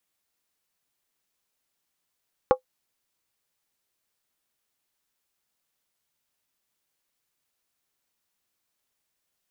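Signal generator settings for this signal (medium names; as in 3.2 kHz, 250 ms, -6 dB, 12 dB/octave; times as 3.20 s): skin hit, lowest mode 513 Hz, decay 0.10 s, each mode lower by 5 dB, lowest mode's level -10 dB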